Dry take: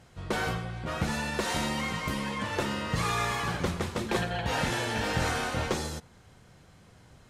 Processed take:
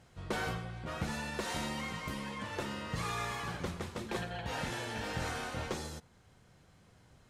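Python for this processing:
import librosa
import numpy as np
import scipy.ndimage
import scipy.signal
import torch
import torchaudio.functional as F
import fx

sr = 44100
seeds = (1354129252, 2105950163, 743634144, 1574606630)

y = fx.rider(x, sr, range_db=10, speed_s=2.0)
y = F.gain(torch.from_numpy(y), -8.0).numpy()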